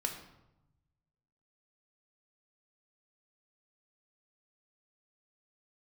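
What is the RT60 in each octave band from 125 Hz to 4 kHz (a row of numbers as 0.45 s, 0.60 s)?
1.7 s, 1.2 s, 0.90 s, 0.90 s, 0.70 s, 0.60 s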